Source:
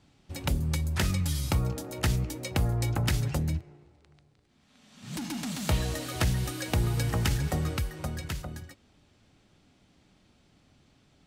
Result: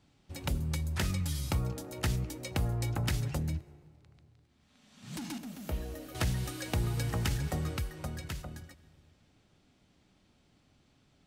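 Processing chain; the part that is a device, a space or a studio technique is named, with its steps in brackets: 5.38–6.15 graphic EQ 125/1000/2000/4000/8000 Hz -12/-8/-6/-10/-11 dB; compressed reverb return (on a send at -12 dB: reverb RT60 1.4 s, pre-delay 71 ms + compressor, threshold -40 dBFS, peak gain reduction 17 dB); on the sum: gain -4.5 dB

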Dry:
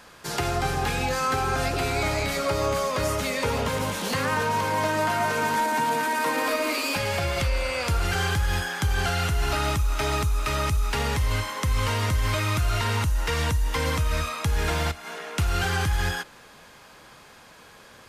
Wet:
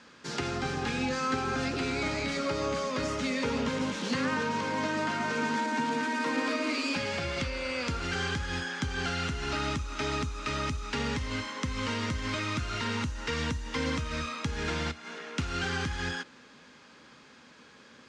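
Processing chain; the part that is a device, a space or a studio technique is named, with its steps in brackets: car door speaker (speaker cabinet 84–6800 Hz, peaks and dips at 100 Hz -7 dB, 250 Hz +10 dB, 700 Hz -8 dB, 1000 Hz -3 dB); gain -4.5 dB

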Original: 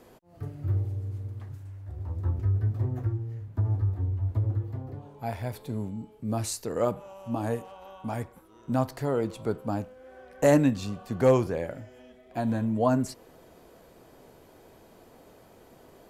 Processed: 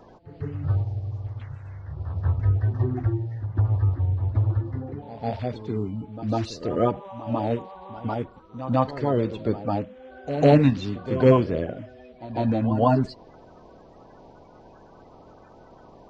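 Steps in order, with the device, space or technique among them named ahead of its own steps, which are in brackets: clip after many re-uploads (LPF 4400 Hz 24 dB/oct; bin magnitudes rounded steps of 30 dB); pre-echo 0.15 s -13 dB; gain +5 dB

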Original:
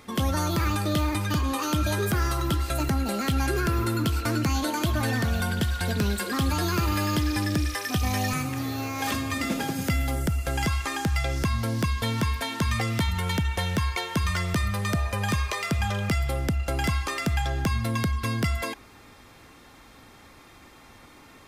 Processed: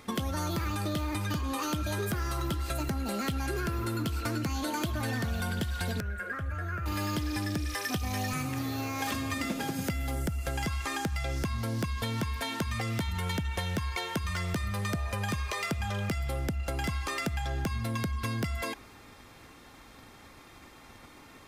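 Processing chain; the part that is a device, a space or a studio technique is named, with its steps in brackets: drum-bus smash (transient shaper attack +6 dB, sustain +1 dB; compressor, threshold -25 dBFS, peak gain reduction 9.5 dB; soft clip -20 dBFS, distortion -22 dB); 6–6.86 EQ curve 100 Hz 0 dB, 260 Hz -15 dB, 640 Hz -2 dB, 910 Hz -17 dB, 1500 Hz +5 dB, 4200 Hz -26 dB, 6300 Hz -20 dB; gain -2 dB

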